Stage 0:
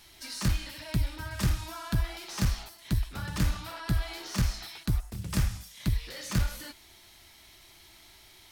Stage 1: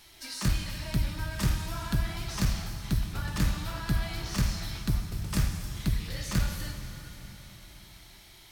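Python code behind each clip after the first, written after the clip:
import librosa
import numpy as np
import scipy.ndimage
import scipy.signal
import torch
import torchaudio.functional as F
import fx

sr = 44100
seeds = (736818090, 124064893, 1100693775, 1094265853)

y = fx.rev_plate(x, sr, seeds[0], rt60_s=4.2, hf_ratio=0.9, predelay_ms=0, drr_db=5.5)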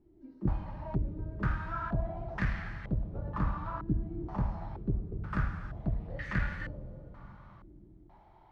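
y = fx.filter_held_lowpass(x, sr, hz=2.1, low_hz=330.0, high_hz=1800.0)
y = F.gain(torch.from_numpy(y), -4.5).numpy()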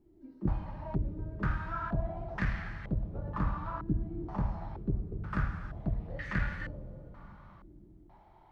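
y = fx.hum_notches(x, sr, base_hz=60, count=2)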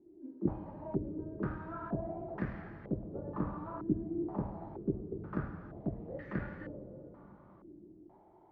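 y = fx.bandpass_q(x, sr, hz=370.0, q=1.6)
y = F.gain(torch.from_numpy(y), 6.5).numpy()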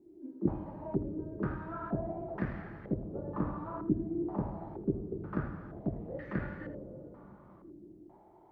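y = x + 10.0 ** (-14.0 / 20.0) * np.pad(x, (int(81 * sr / 1000.0), 0))[:len(x)]
y = F.gain(torch.from_numpy(y), 2.0).numpy()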